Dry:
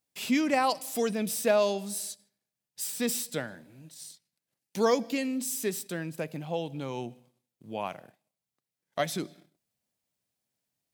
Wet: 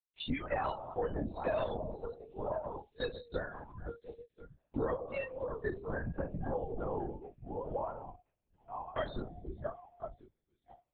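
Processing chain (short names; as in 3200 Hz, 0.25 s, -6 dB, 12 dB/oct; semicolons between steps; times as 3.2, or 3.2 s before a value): regenerating reverse delay 0.519 s, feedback 53%, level -11 dB; spring tank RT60 1.1 s, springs 32/43 ms, chirp 30 ms, DRR 10.5 dB; spectral noise reduction 30 dB; compressor 4:1, threshold -40 dBFS, peak gain reduction 17 dB; LPC vocoder at 8 kHz whisper; gain +5.5 dB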